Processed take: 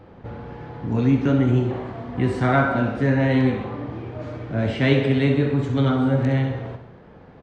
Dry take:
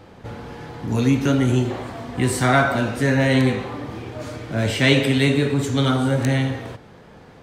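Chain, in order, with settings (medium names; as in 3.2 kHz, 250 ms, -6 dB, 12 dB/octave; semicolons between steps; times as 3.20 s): tape spacing loss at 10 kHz 29 dB; on a send: feedback delay 66 ms, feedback 54%, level -10.5 dB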